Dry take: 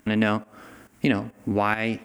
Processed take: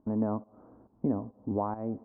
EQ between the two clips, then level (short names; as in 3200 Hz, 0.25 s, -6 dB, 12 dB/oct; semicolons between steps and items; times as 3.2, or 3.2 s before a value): Chebyshev low-pass 1000 Hz, order 4; air absorption 160 m; -6.0 dB